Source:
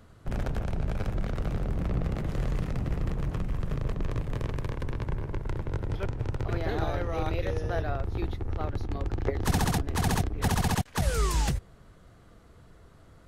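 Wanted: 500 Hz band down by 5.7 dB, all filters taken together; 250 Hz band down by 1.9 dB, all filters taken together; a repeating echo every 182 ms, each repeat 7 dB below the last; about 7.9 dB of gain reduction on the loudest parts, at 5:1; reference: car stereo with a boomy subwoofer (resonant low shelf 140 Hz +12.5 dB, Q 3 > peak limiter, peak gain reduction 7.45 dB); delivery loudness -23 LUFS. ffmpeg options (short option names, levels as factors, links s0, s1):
-af "equalizer=f=250:t=o:g=-4,equalizer=f=500:t=o:g=-4.5,acompressor=threshold=0.0282:ratio=5,lowshelf=f=140:t=q:w=3:g=12.5,aecho=1:1:182|364|546|728|910:0.447|0.201|0.0905|0.0407|0.0183,volume=1.19,alimiter=limit=0.224:level=0:latency=1"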